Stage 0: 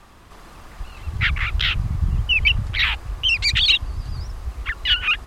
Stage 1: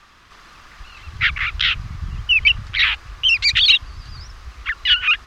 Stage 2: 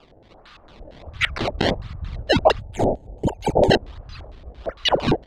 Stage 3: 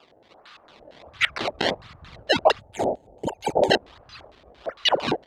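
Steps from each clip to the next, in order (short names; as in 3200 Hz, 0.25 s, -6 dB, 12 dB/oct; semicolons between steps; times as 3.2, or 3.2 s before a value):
band shelf 2700 Hz +11 dB 2.8 oct; gain -7.5 dB
decimation with a swept rate 21×, swing 160% 1.4 Hz; spectral gain 2.59–3.71, 940–6200 Hz -20 dB; LFO low-pass square 4.4 Hz 630–3800 Hz; gain -3 dB
HPF 540 Hz 6 dB/oct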